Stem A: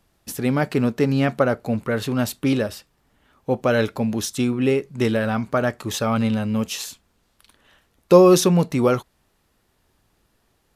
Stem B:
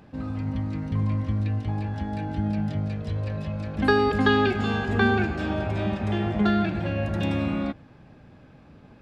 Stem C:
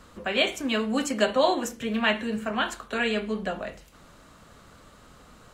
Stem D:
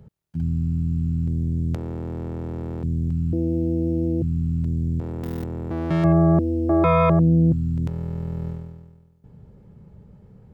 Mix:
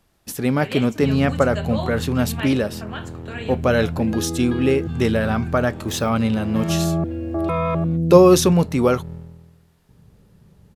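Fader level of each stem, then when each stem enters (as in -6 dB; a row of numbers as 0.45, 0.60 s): +1.0, -15.0, -7.5, -4.5 dB; 0.00, 0.25, 0.35, 0.65 s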